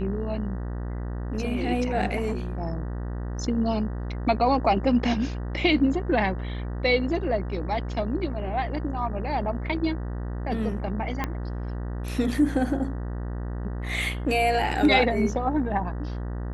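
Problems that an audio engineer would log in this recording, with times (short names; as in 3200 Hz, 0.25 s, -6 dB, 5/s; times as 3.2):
buzz 60 Hz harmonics 32 -31 dBFS
11.24 pop -13 dBFS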